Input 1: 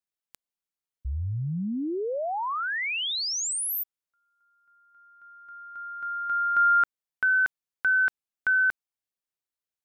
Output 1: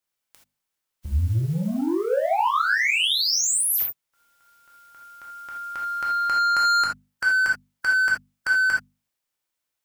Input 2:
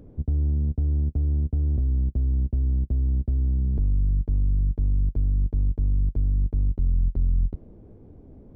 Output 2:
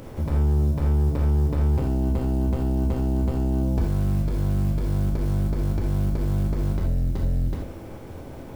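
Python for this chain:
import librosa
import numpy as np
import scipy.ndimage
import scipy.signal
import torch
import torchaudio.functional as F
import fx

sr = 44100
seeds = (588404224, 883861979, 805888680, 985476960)

y = fx.spec_flatten(x, sr, power=0.61)
y = fx.hum_notches(y, sr, base_hz=50, count=5)
y = 10.0 ** (-28.5 / 20.0) * np.tanh(y / 10.0 ** (-28.5 / 20.0))
y = fx.rev_gated(y, sr, seeds[0], gate_ms=100, shape='flat', drr_db=-2.5)
y = y * librosa.db_to_amplitude(6.0)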